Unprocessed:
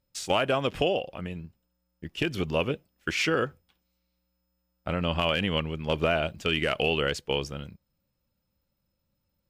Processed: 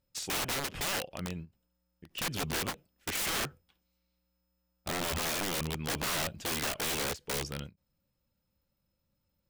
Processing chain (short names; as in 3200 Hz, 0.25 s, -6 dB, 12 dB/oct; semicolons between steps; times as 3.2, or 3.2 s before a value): wrapped overs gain 25.5 dB; ending taper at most 320 dB/s; gain -2 dB